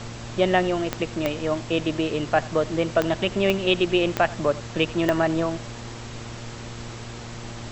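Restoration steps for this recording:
click removal
hum removal 116.8 Hz, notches 11
broadband denoise 30 dB, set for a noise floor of −36 dBFS
echo removal 87 ms −20.5 dB

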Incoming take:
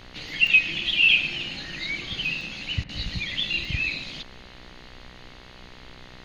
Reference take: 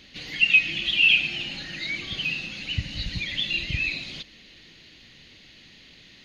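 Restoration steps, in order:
hum removal 62.4 Hz, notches 36
repair the gap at 0:00.47/0:02.41/0:03.11/0:03.65, 1.8 ms
repair the gap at 0:02.84, 49 ms
noise reduction from a noise print 6 dB

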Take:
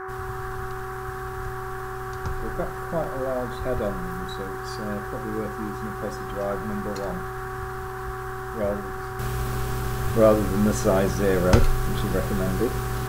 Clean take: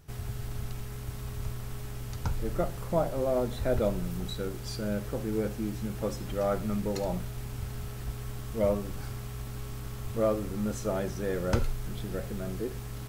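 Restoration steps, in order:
hum removal 378.2 Hz, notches 3
repair the gap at 0:03.04/0:08.78/0:09.53, 1 ms
noise reduction from a noise print 6 dB
level correction −10 dB, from 0:09.19

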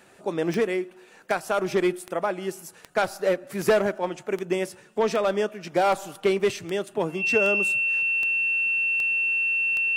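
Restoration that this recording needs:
click removal
notch filter 2,700 Hz, Q 30

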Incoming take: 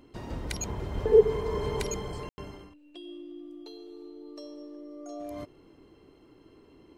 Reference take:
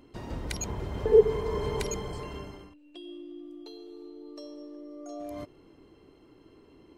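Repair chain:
high-pass at the plosives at 0:00.94
ambience match 0:02.29–0:02.38

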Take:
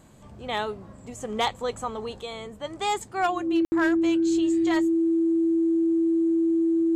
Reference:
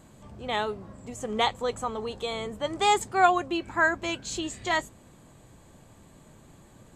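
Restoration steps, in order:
clipped peaks rebuilt −17 dBFS
notch filter 330 Hz, Q 30
ambience match 0:03.65–0:03.72
level correction +4 dB, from 0:02.21

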